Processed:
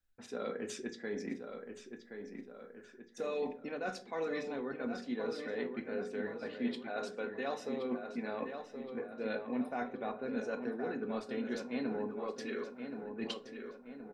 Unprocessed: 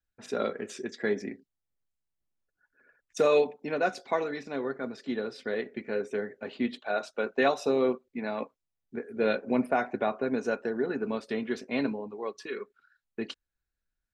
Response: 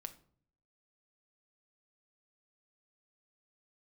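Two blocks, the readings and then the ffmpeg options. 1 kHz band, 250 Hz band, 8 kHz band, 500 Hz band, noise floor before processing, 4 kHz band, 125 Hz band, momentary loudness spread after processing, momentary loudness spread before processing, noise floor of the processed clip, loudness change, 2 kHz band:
−9.5 dB, −5.5 dB, can't be measured, −9.0 dB, below −85 dBFS, −6.0 dB, −7.5 dB, 10 LU, 13 LU, −56 dBFS, −9.0 dB, −8.5 dB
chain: -filter_complex "[0:a]areverse,acompressor=threshold=-38dB:ratio=5,areverse,asplit=2[link_01][link_02];[link_02]adelay=1073,lowpass=frequency=3500:poles=1,volume=-7dB,asplit=2[link_03][link_04];[link_04]adelay=1073,lowpass=frequency=3500:poles=1,volume=0.53,asplit=2[link_05][link_06];[link_06]adelay=1073,lowpass=frequency=3500:poles=1,volume=0.53,asplit=2[link_07][link_08];[link_08]adelay=1073,lowpass=frequency=3500:poles=1,volume=0.53,asplit=2[link_09][link_10];[link_10]adelay=1073,lowpass=frequency=3500:poles=1,volume=0.53,asplit=2[link_11][link_12];[link_12]adelay=1073,lowpass=frequency=3500:poles=1,volume=0.53[link_13];[link_01][link_03][link_05][link_07][link_09][link_11][link_13]amix=inputs=7:normalize=0[link_14];[1:a]atrim=start_sample=2205,asetrate=66150,aresample=44100[link_15];[link_14][link_15]afir=irnorm=-1:irlink=0,volume=9dB"

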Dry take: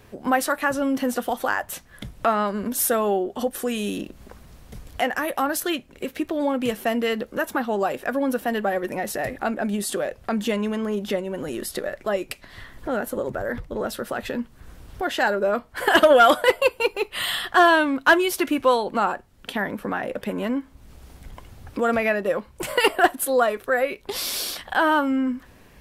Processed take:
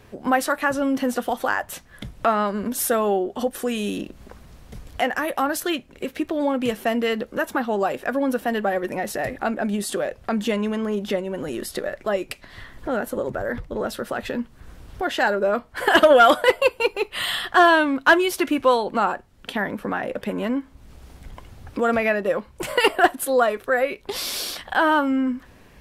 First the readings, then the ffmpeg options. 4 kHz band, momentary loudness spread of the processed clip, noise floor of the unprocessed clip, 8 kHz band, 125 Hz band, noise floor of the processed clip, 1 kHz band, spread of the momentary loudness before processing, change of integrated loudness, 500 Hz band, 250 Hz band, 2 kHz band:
+0.5 dB, 12 LU, −51 dBFS, −1.5 dB, +1.0 dB, −50 dBFS, +1.0 dB, 12 LU, +1.0 dB, +1.0 dB, +1.0 dB, +1.0 dB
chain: -af "highshelf=frequency=10000:gain=-6,volume=1dB"

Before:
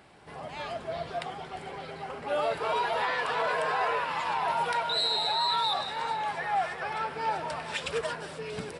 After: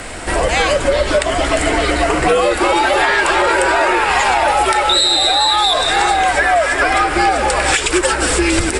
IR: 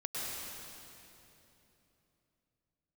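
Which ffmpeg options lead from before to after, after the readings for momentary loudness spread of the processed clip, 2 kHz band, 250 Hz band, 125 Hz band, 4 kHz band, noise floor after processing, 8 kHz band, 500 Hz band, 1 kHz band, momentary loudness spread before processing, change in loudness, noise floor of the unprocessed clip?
4 LU, +19.0 dB, +25.0 dB, +20.0 dB, +16.0 dB, −21 dBFS, +28.0 dB, +17.5 dB, +14.5 dB, 13 LU, +16.5 dB, −44 dBFS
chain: -af "equalizer=frequency=125:width_type=o:width=1:gain=6,equalizer=frequency=250:width_type=o:width=1:gain=-5,equalizer=frequency=1000:width_type=o:width=1:gain=-3,equalizer=frequency=2000:width_type=o:width=1:gain=3,equalizer=frequency=4000:width_type=o:width=1:gain=-3,equalizer=frequency=8000:width_type=o:width=1:gain=12,acompressor=threshold=-38dB:ratio=10,afreqshift=-98,alimiter=level_in=28.5dB:limit=-1dB:release=50:level=0:latency=1,volume=-1dB"

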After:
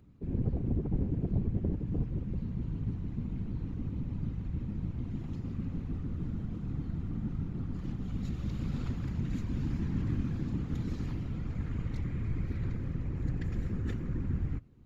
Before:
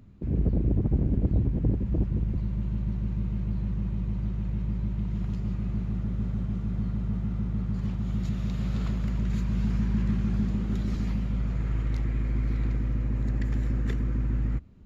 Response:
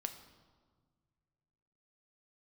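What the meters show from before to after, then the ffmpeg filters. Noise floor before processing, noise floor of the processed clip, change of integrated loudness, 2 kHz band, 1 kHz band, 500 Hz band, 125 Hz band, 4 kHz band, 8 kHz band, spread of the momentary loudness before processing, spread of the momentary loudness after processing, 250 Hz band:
−32 dBFS, −40 dBFS, −6.5 dB, −6.0 dB, −5.5 dB, −4.5 dB, −5.5 dB, −6.0 dB, can't be measured, 5 LU, 5 LU, −5.5 dB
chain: -af "afftfilt=real='hypot(re,im)*cos(2*PI*random(0))':imag='hypot(re,im)*sin(2*PI*random(1))':win_size=512:overlap=0.75,bandreject=frequency=620:width=12"

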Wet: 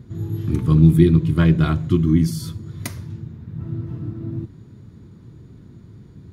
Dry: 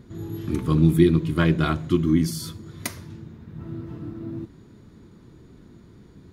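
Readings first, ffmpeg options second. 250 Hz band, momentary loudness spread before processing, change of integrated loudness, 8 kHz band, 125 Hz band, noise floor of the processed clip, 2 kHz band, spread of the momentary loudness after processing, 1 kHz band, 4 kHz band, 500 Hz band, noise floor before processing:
+3.5 dB, 21 LU, +4.5 dB, −1.5 dB, +6.5 dB, −45 dBFS, −1.5 dB, 19 LU, −1.5 dB, −1.5 dB, +0.5 dB, −50 dBFS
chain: -af "equalizer=frequency=110:width_type=o:width=1.6:gain=11.5,volume=-1.5dB"

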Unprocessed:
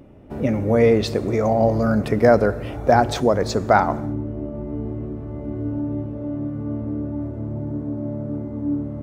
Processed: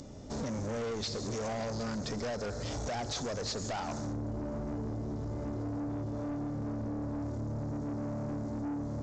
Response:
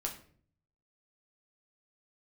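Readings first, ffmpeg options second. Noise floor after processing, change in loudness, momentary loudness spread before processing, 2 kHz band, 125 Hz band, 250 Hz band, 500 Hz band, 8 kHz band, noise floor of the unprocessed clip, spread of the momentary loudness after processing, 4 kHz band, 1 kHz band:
−39 dBFS, −15.0 dB, 13 LU, −16.5 dB, −11.5 dB, −13.0 dB, −18.0 dB, −2.5 dB, −32 dBFS, 2 LU, −5.5 dB, −18.0 dB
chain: -filter_complex "[0:a]acrossover=split=3900[link_01][link_02];[link_02]acompressor=threshold=-53dB:ratio=4:attack=1:release=60[link_03];[link_01][link_03]amix=inputs=2:normalize=0,aexciter=amount=11.3:drive=7.9:freq=4100,acompressor=threshold=-26dB:ratio=4,equalizer=frequency=350:width=5.7:gain=-6.5,aresample=16000,asoftclip=type=tanh:threshold=-33dB,aresample=44100"

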